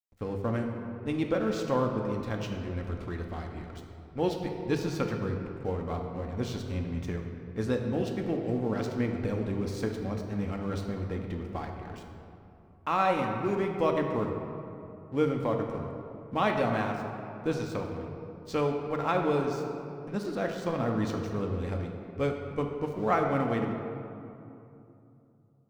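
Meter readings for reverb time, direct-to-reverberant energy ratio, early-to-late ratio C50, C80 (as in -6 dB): 2.8 s, 2.0 dB, 4.0 dB, 5.5 dB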